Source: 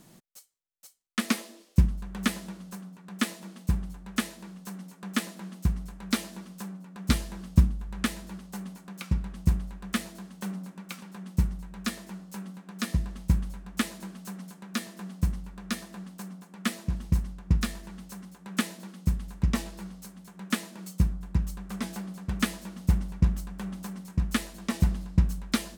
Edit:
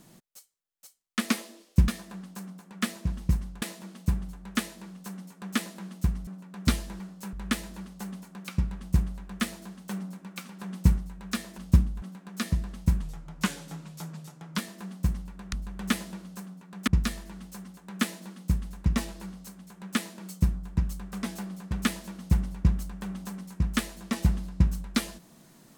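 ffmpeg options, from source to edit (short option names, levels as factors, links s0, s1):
-filter_complex "[0:a]asplit=14[s0][s1][s2][s3][s4][s5][s6][s7][s8][s9][s10][s11][s12][s13];[s0]atrim=end=1.882[s14];[s1]atrim=start=15.708:end=17.452[s15];[s2]atrim=start=3.228:end=5.882[s16];[s3]atrim=start=6.688:end=7.422[s17];[s4]atrim=start=12.108:end=12.442[s18];[s5]atrim=start=7.858:end=11.132[s19];[s6]atrim=start=11.128:end=11.512,asetpts=PTS-STARTPTS,volume=1.58[s20];[s7]atrim=start=11.508:end=12.112[s21];[s8]atrim=start=7.418:end=7.862[s22];[s9]atrim=start=12.438:end=13.444[s23];[s10]atrim=start=13.44:end=14.77,asetpts=PTS-STARTPTS,asetrate=37485,aresample=44100[s24];[s11]atrim=start=14.766:end=15.712[s25];[s12]atrim=start=1.878:end=3.232[s26];[s13]atrim=start=17.448[s27];[s14][s15]acrossfade=d=0.004:c1=hsin:c2=hsin[s28];[s28][s16]acrossfade=d=0.004:c1=hsin:c2=hsin[s29];[s29][s17]acrossfade=d=0.004:c1=hsin:c2=hsin[s30];[s30][s18]acrossfade=d=0.004:c1=hsin:c2=hsin[s31];[s31][s19]acrossfade=d=0.004:c1=hsin:c2=hsin[s32];[s32][s20]acrossfade=d=0.004:c1=hsin:c2=hsin[s33];[s33][s21]acrossfade=d=0.004:c1=hsin:c2=hsin[s34];[s34][s22]acrossfade=d=0.004:c1=hsin:c2=hsin[s35];[s35][s23]acrossfade=d=0.004:c1=hsin:c2=hsin[s36];[s36][s24]acrossfade=d=0.004:c1=hsin:c2=hsin[s37];[s37][s25]acrossfade=d=0.004:c1=hsin:c2=hsin[s38];[s38][s26]acrossfade=d=0.004:c1=hsin:c2=hsin[s39];[s39][s27]acrossfade=d=0.004:c1=hsin:c2=hsin"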